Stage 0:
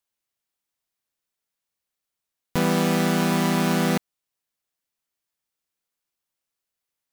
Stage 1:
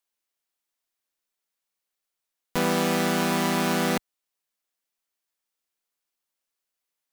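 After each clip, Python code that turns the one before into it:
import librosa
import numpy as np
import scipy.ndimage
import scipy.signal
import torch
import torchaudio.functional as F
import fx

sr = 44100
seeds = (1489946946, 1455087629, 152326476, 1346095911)

y = fx.peak_eq(x, sr, hz=93.0, db=-14.5, octaves=1.5)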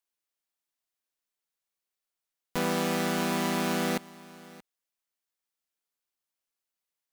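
y = x + 10.0 ** (-20.5 / 20.0) * np.pad(x, (int(628 * sr / 1000.0), 0))[:len(x)]
y = y * librosa.db_to_amplitude(-4.5)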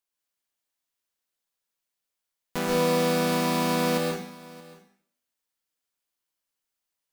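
y = fx.rev_plate(x, sr, seeds[0], rt60_s=0.6, hf_ratio=0.95, predelay_ms=110, drr_db=0.0)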